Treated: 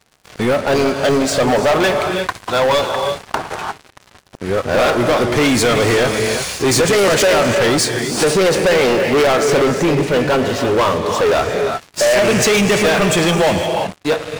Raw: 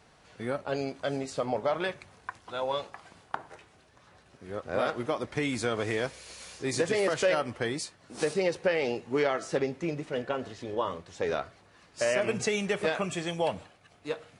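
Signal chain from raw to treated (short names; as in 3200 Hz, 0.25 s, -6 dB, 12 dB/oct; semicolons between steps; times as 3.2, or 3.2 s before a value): non-linear reverb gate 0.38 s rising, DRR 9 dB; sample leveller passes 5; gain +4.5 dB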